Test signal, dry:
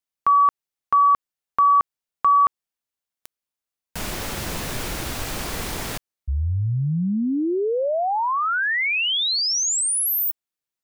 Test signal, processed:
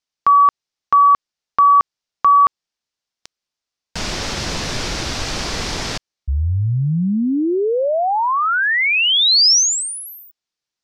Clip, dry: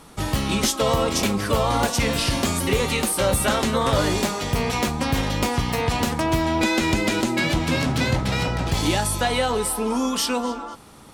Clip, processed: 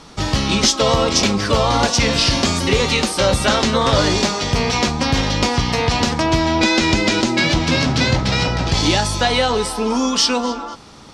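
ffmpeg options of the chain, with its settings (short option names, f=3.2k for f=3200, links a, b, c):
-af "lowpass=f=5.4k:t=q:w=2,volume=4.5dB"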